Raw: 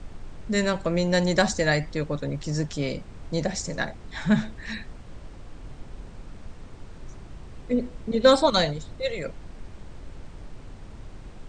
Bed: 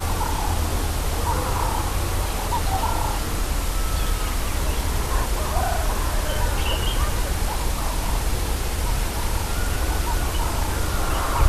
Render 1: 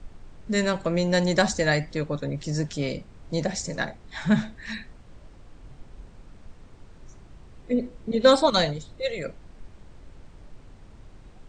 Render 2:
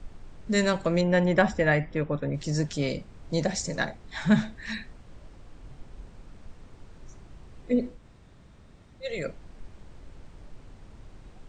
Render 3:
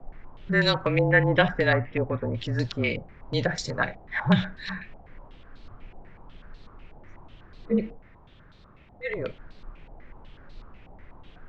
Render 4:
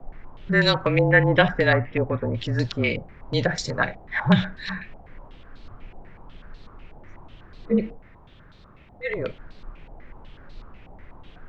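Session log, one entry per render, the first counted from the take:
noise reduction from a noise print 6 dB
0:01.01–0:02.34: Savitzky-Golay smoothing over 25 samples; 0:07.98–0:09.07: fill with room tone, crossfade 0.16 s
frequency shifter −31 Hz; low-pass on a step sequencer 8.1 Hz 770–4,100 Hz
level +3 dB

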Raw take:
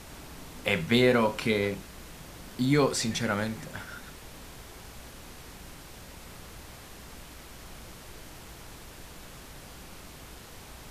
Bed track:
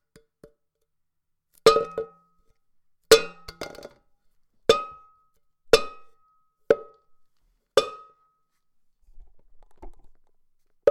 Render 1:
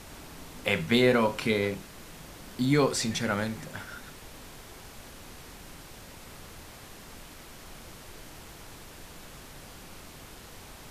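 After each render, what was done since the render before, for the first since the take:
hum removal 60 Hz, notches 3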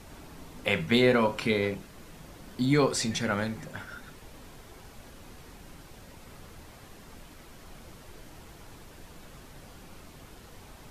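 broadband denoise 6 dB, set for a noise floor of −48 dBFS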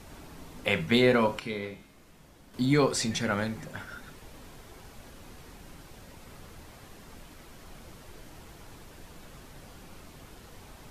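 0:01.39–0:02.54: tuned comb filter 69 Hz, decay 0.82 s, mix 70%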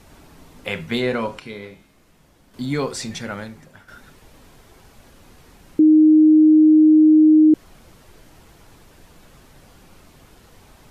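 0:01.00–0:01.46: low-pass filter 11,000 Hz
0:03.15–0:03.88: fade out, to −9 dB
0:05.79–0:07.54: beep over 310 Hz −8 dBFS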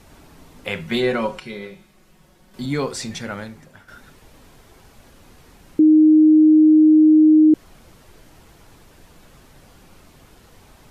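0:00.85–0:02.66: comb filter 5.4 ms, depth 62%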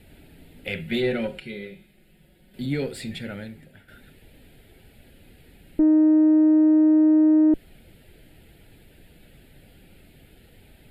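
tube saturation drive 12 dB, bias 0.4
phaser with its sweep stopped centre 2,600 Hz, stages 4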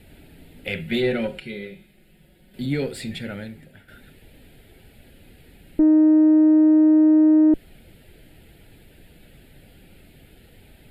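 level +2 dB

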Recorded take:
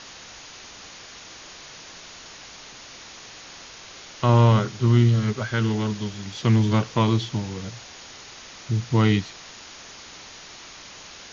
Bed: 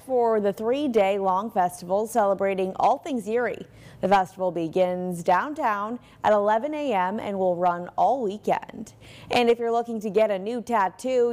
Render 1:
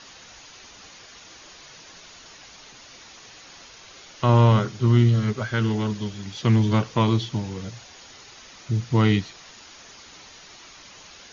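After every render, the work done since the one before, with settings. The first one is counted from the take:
broadband denoise 6 dB, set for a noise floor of −43 dBFS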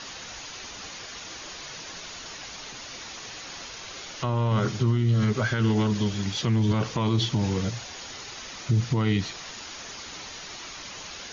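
in parallel at −3 dB: compressor whose output falls as the input rises −23 dBFS
on the sum: brickwall limiter −15.5 dBFS, peak gain reduction 12 dB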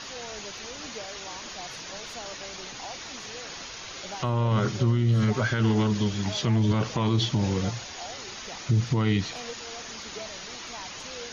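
mix in bed −21 dB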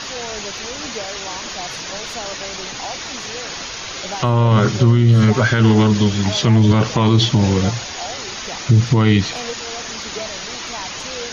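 level +10.5 dB

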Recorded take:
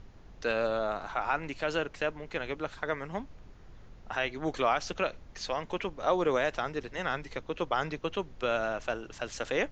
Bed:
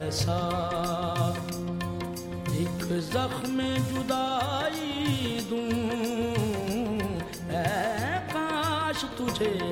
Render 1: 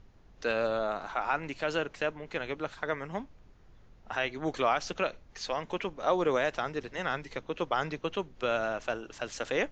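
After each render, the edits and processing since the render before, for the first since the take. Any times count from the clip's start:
noise reduction from a noise print 6 dB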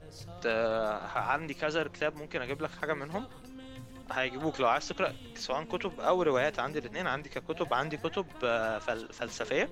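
mix in bed −19.5 dB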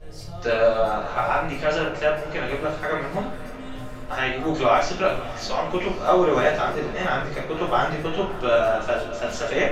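feedback delay with all-pass diffusion 557 ms, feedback 62%, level −15.5 dB
rectangular room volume 52 cubic metres, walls mixed, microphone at 1.5 metres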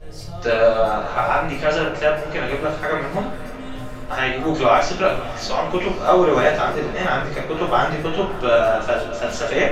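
level +3.5 dB

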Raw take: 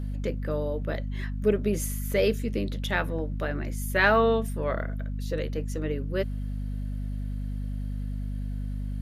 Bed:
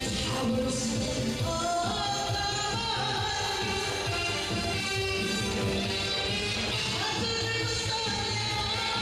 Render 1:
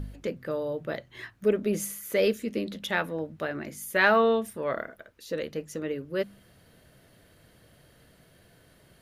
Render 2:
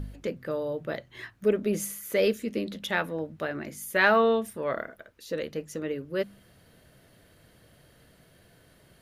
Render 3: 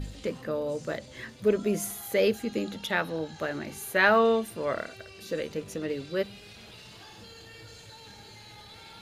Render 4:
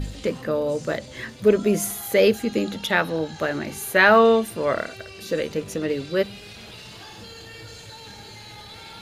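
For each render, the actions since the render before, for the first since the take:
hum removal 50 Hz, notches 5
no processing that can be heard
mix in bed −19 dB
level +7 dB; brickwall limiter −2 dBFS, peak gain reduction 2 dB

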